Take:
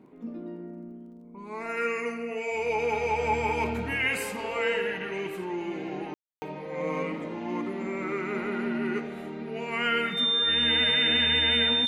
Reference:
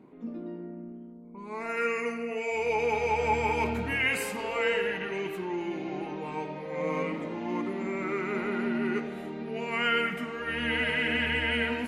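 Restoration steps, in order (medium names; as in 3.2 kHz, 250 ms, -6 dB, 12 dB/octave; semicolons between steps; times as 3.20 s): de-click; band-stop 3.6 kHz, Q 30; room tone fill 6.14–6.42 s; inverse comb 1129 ms -21.5 dB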